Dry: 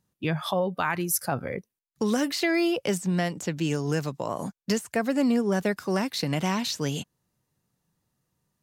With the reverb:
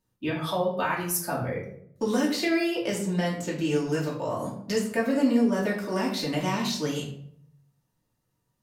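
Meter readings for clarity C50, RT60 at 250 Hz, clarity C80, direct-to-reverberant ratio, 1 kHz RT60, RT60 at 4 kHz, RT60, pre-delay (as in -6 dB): 6.5 dB, 0.80 s, 10.0 dB, -4.5 dB, 0.60 s, 0.45 s, 0.65 s, 3 ms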